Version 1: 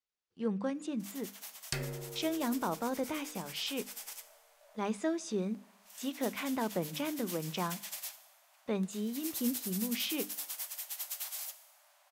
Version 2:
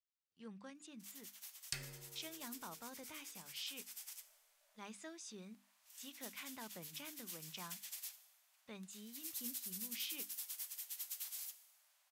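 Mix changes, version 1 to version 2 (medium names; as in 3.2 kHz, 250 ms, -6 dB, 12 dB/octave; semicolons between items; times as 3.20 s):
speech: send off; second sound: send +11.0 dB; master: add amplifier tone stack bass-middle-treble 5-5-5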